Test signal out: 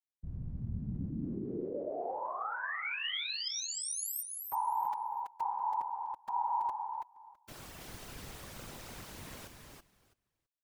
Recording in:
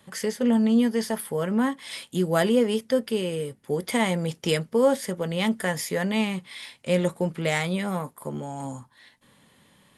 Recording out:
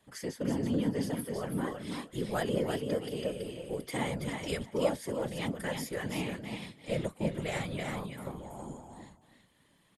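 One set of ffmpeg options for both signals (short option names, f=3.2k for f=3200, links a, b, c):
-af "aecho=1:1:329|658|987:0.562|0.0844|0.0127,afftfilt=real='hypot(re,im)*cos(2*PI*random(0))':imag='hypot(re,im)*sin(2*PI*random(1))':win_size=512:overlap=0.75,volume=-4.5dB"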